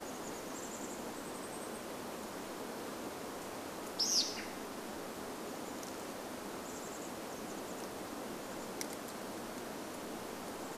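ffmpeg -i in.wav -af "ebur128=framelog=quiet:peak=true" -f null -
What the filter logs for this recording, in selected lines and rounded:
Integrated loudness:
  I:         -41.4 LUFS
  Threshold: -51.4 LUFS
Loudness range:
  LRA:         5.5 LU
  Threshold: -60.8 LUFS
  LRA low:   -43.8 LUFS
  LRA high:  -38.4 LUFS
True peak:
  Peak:      -19.0 dBFS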